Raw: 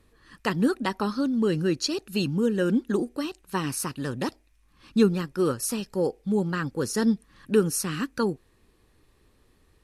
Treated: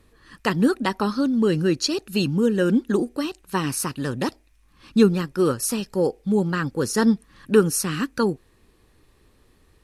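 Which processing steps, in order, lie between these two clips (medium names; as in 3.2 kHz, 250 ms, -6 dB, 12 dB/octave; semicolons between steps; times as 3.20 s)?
6.97–7.61 s: dynamic bell 1.1 kHz, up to +6 dB, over -40 dBFS, Q 1.1; trim +4 dB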